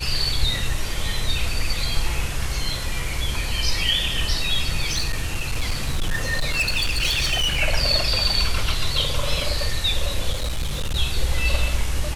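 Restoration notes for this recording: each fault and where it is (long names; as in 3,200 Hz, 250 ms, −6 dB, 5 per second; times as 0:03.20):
0:04.87–0:07.62: clipping −17.5 dBFS
0:10.32–0:10.97: clipping −20.5 dBFS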